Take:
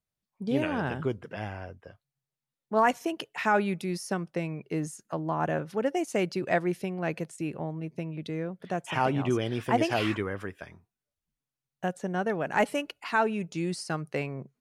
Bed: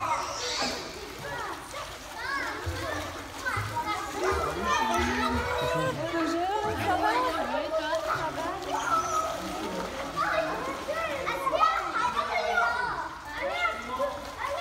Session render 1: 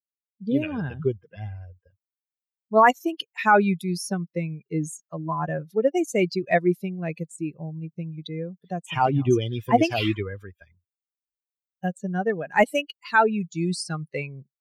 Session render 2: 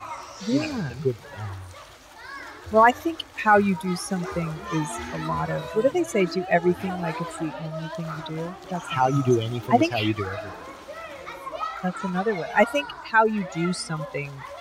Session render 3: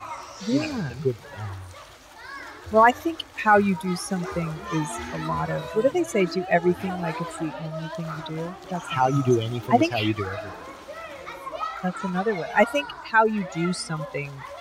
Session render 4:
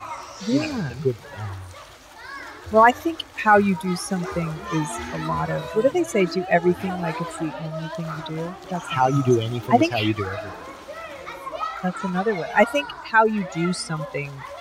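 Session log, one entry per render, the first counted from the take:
expander on every frequency bin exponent 2; level rider gain up to 10 dB
add bed -7 dB
no audible change
trim +2 dB

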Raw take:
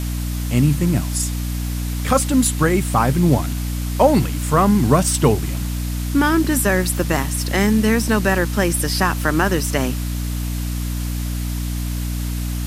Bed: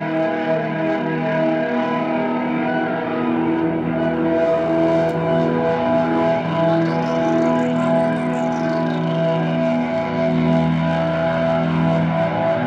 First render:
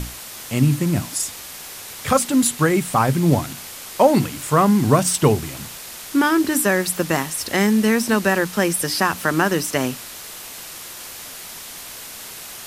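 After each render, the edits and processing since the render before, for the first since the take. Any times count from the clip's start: hum notches 60/120/180/240/300 Hz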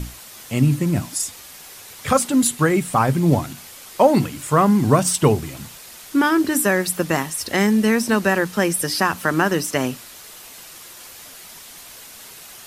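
noise reduction 6 dB, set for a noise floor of -36 dBFS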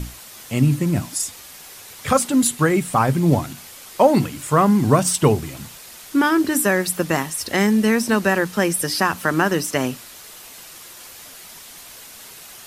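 no audible change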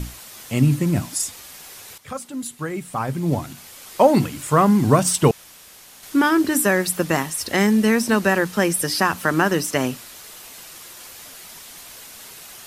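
1.98–3.93 s: fade in quadratic, from -14.5 dB; 5.31–6.03 s: room tone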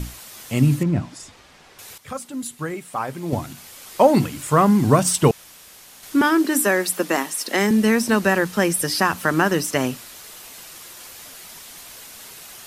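0.83–1.79 s: tape spacing loss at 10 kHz 21 dB; 2.74–3.33 s: tone controls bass -11 dB, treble -2 dB; 6.21–7.71 s: steep high-pass 210 Hz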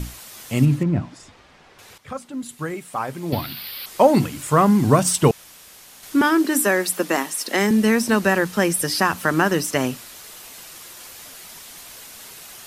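0.65–2.49 s: low-pass 3.1 kHz 6 dB/octave; 3.32–3.86 s: FFT filter 730 Hz 0 dB, 4.6 kHz +14 dB, 6.8 kHz -19 dB, 14 kHz +15 dB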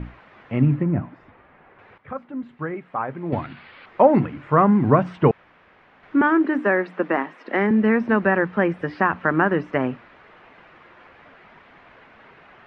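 low-pass 2.1 kHz 24 dB/octave; bass shelf 74 Hz -7.5 dB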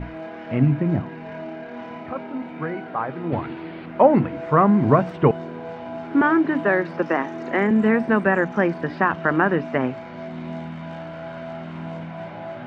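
add bed -15.5 dB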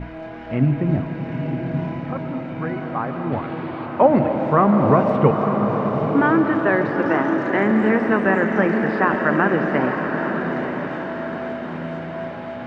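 echo that smears into a reverb 913 ms, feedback 47%, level -6 dB; algorithmic reverb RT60 3.8 s, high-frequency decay 0.9×, pre-delay 90 ms, DRR 6 dB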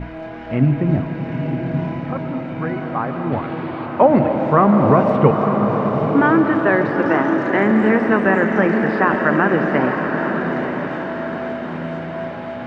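trim +2.5 dB; peak limiter -2 dBFS, peak gain reduction 1.5 dB

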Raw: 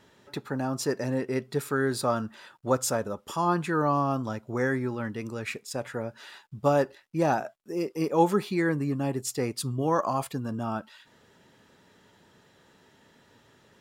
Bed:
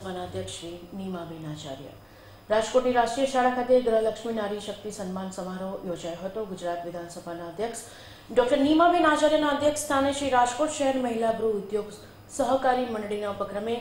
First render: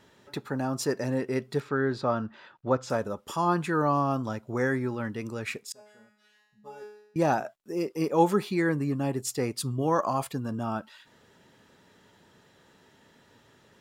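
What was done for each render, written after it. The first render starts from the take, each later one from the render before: 1.60–2.90 s: distance through air 190 m; 5.72–7.16 s: feedback comb 210 Hz, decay 0.78 s, mix 100%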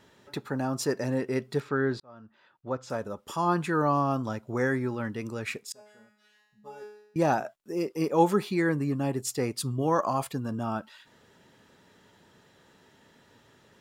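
2.00–3.57 s: fade in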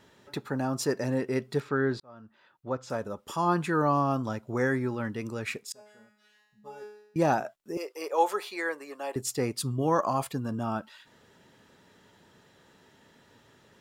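7.77–9.16 s: high-pass 480 Hz 24 dB/octave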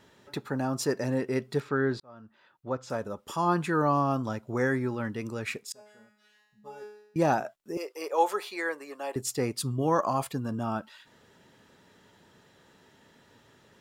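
no audible change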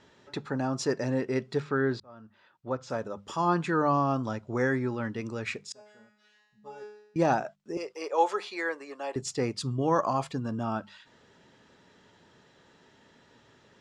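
low-pass 7.2 kHz 24 dB/octave; hum notches 50/100/150/200 Hz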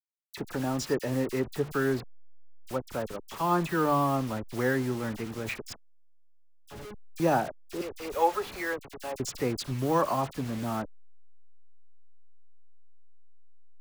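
send-on-delta sampling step -36 dBFS; phase dispersion lows, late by 41 ms, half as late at 2.1 kHz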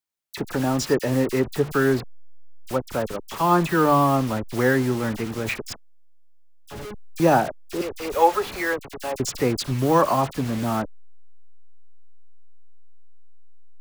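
trim +7.5 dB

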